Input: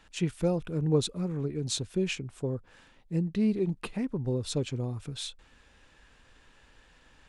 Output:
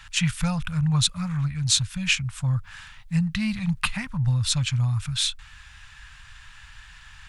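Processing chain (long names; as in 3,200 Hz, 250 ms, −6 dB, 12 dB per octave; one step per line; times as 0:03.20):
Chebyshev band-stop filter 110–1,300 Hz, order 2
in parallel at 0 dB: speech leveller 0.5 s
on the sum: level +8 dB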